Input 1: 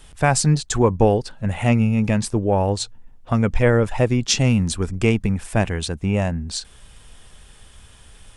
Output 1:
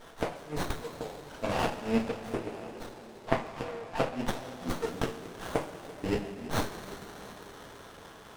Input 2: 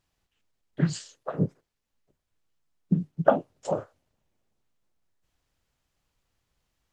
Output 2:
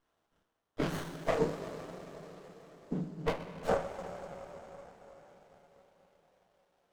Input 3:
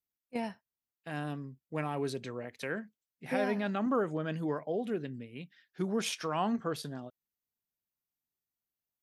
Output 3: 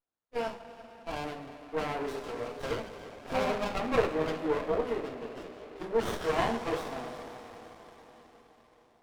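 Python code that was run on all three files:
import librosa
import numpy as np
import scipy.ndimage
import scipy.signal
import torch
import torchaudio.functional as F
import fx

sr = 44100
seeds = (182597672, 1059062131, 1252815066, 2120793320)

p1 = scipy.signal.sosfilt(scipy.signal.butter(2, 480.0, 'highpass', fs=sr, output='sos'), x)
p2 = fx.high_shelf(p1, sr, hz=7900.0, db=-10.0)
p3 = fx.gate_flip(p2, sr, shuts_db=-18.0, range_db=-30)
p4 = p3 + fx.echo_single(p3, sr, ms=336, db=-20.0, dry=0)
p5 = fx.rev_double_slope(p4, sr, seeds[0], early_s=0.28, late_s=5.0, knee_db=-19, drr_db=-4.5)
p6 = fx.running_max(p5, sr, window=17)
y = p6 * librosa.db_to_amplitude(2.0)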